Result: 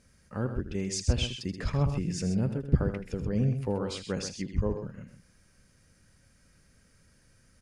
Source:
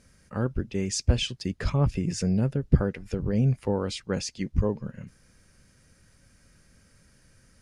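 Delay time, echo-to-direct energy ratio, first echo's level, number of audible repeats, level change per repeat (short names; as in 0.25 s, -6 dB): 79 ms, -7.5 dB, -11.5 dB, 2, no steady repeat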